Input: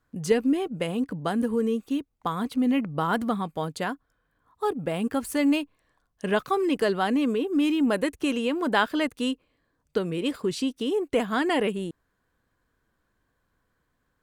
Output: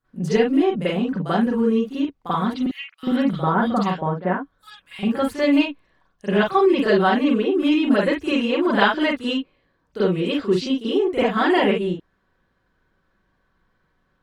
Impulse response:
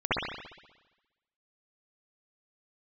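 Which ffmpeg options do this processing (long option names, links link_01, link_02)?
-filter_complex "[0:a]asettb=1/sr,asplit=3[link_01][link_02][link_03];[link_01]atrim=end=2.624[link_04];[link_02]atrim=start=2.62:end=4.99,asetpts=PTS-STARTPTS,afade=type=in:duration=0.004:curve=qsin,afade=type=out:start_time=2.366:duration=0.004:curve=qsin,acrossover=split=2000[link_05][link_06];[link_05]adelay=410[link_07];[link_07][link_06]amix=inputs=2:normalize=0,atrim=end_sample=104517[link_08];[link_03]atrim=start=4.986[link_09];[link_04][link_08]acrossfade=duration=0.004:curve1=hsin:curve2=qsin[link_10];[link_10][link_09]acrossfade=duration=0.004:curve1=qsin:curve2=hsin[link_11];[1:a]atrim=start_sample=2205,afade=type=out:start_time=0.19:duration=0.01,atrim=end_sample=8820,asetrate=66150,aresample=44100[link_12];[link_11][link_12]afir=irnorm=-1:irlink=0,volume=-3dB"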